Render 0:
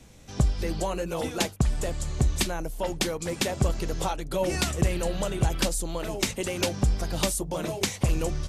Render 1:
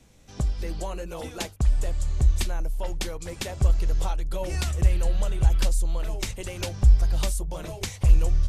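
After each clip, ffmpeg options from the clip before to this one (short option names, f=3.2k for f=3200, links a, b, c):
-af "asubboost=boost=8:cutoff=76,volume=-5dB"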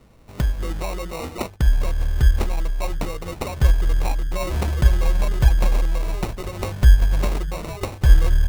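-af "acrusher=samples=27:mix=1:aa=0.000001,volume=4.5dB"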